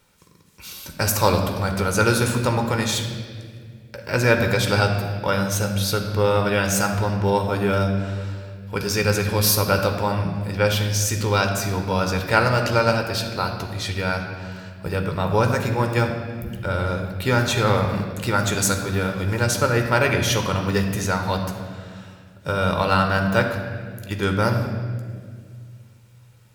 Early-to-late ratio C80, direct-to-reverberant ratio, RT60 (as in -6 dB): 7.0 dB, 4.0 dB, 1.9 s